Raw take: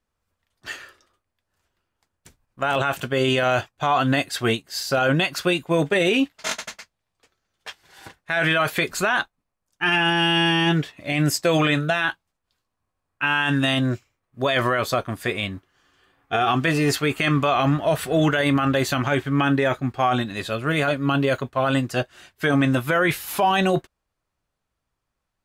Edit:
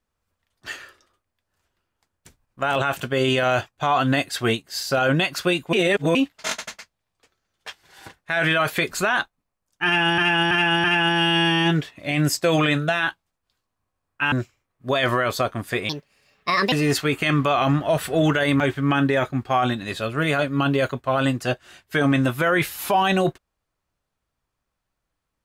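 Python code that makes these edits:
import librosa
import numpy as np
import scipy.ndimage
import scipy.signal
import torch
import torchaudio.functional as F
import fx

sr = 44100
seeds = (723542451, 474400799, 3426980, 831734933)

y = fx.edit(x, sr, fx.reverse_span(start_s=5.73, length_s=0.42),
    fx.repeat(start_s=9.85, length_s=0.33, count=4),
    fx.cut(start_s=13.33, length_s=0.52),
    fx.speed_span(start_s=15.42, length_s=1.28, speed=1.54),
    fx.cut(start_s=18.58, length_s=0.51), tone=tone)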